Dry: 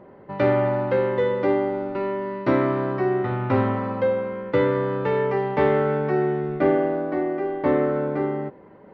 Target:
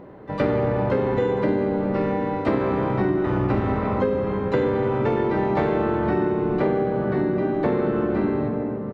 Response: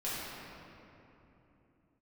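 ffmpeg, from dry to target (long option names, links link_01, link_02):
-filter_complex "[0:a]asplit=4[link_01][link_02][link_03][link_04];[link_02]asetrate=22050,aresample=44100,atempo=2,volume=-7dB[link_05];[link_03]asetrate=35002,aresample=44100,atempo=1.25992,volume=-3dB[link_06];[link_04]asetrate=88200,aresample=44100,atempo=0.5,volume=-16dB[link_07];[link_01][link_05][link_06][link_07]amix=inputs=4:normalize=0,asplit=2[link_08][link_09];[1:a]atrim=start_sample=2205[link_10];[link_09][link_10]afir=irnorm=-1:irlink=0,volume=-9dB[link_11];[link_08][link_11]amix=inputs=2:normalize=0,acompressor=threshold=-18dB:ratio=6"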